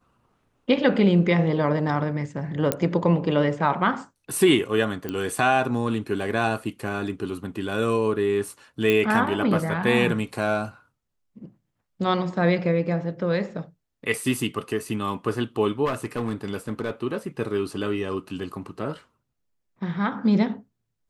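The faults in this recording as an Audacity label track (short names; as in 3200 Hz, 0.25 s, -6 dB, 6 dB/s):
2.720000	2.720000	pop -6 dBFS
5.090000	5.090000	pop -16 dBFS
8.900000	8.900000	pop -10 dBFS
15.850000	16.910000	clipped -21.5 dBFS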